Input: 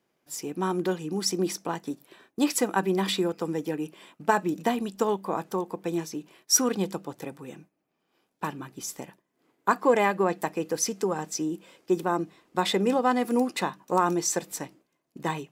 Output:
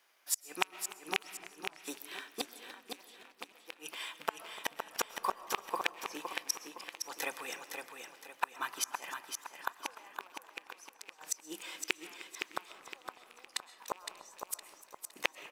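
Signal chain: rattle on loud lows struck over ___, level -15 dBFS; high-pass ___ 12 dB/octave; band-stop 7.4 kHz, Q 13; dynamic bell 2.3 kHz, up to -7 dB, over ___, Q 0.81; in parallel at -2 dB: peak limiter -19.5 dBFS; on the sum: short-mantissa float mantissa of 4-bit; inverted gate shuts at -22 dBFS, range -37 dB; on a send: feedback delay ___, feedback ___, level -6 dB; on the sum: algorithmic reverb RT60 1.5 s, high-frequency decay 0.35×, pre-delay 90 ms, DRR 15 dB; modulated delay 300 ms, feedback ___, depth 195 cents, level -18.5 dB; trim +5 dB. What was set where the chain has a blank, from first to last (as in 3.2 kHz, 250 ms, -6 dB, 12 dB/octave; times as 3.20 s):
-30 dBFS, 1.1 kHz, -40 dBFS, 513 ms, 38%, 41%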